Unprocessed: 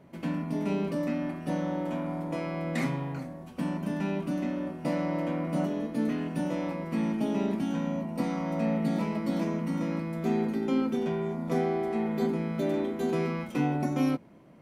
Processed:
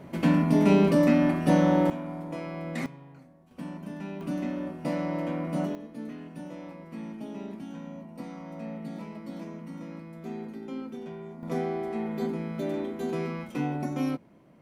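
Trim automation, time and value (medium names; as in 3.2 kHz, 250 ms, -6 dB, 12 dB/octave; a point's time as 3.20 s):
+9.5 dB
from 1.90 s -3 dB
from 2.86 s -15 dB
from 3.51 s -7 dB
from 4.21 s -0.5 dB
from 5.75 s -10 dB
from 11.43 s -2.5 dB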